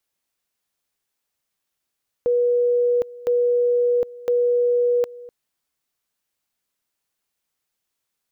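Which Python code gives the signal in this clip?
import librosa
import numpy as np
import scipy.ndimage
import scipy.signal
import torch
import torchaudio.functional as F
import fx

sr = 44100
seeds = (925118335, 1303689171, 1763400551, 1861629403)

y = fx.two_level_tone(sr, hz=485.0, level_db=-15.5, drop_db=20.0, high_s=0.76, low_s=0.25, rounds=3)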